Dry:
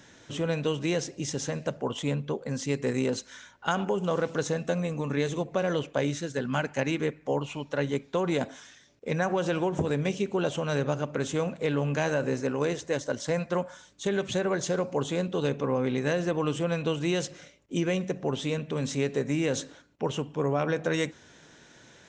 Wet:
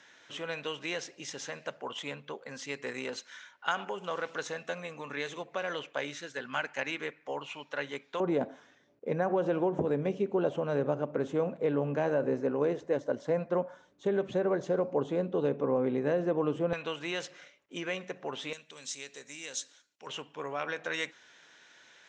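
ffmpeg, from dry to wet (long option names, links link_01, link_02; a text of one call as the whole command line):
ffmpeg -i in.wav -af "asetnsamples=nb_out_samples=441:pad=0,asendcmd='8.2 bandpass f 470;16.73 bandpass f 1700;18.53 bandpass f 7200;20.07 bandpass f 2300',bandpass=frequency=2000:width_type=q:width=0.68:csg=0" out.wav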